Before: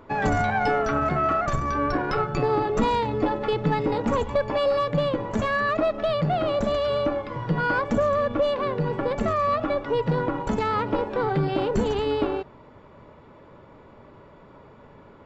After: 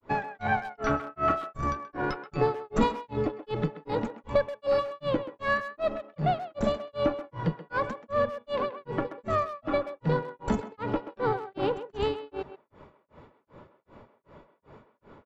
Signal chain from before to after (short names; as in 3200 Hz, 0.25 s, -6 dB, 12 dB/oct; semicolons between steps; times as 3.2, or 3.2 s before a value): grains 0.261 s, grains 2.6/s, spray 39 ms, pitch spread up and down by 0 st; speakerphone echo 0.13 s, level -11 dB